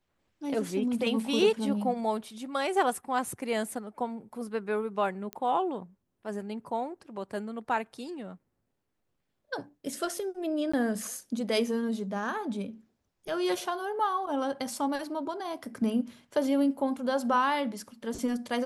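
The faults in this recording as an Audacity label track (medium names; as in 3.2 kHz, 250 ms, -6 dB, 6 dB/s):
5.330000	5.330000	pop -20 dBFS
10.720000	10.730000	dropout 15 ms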